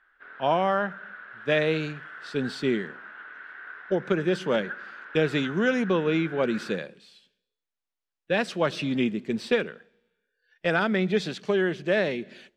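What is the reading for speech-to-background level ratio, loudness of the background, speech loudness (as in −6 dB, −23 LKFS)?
15.0 dB, −41.5 LKFS, −26.5 LKFS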